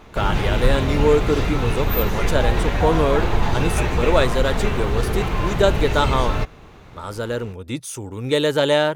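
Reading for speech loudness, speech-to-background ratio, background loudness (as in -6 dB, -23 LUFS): -22.5 LUFS, 0.5 dB, -23.0 LUFS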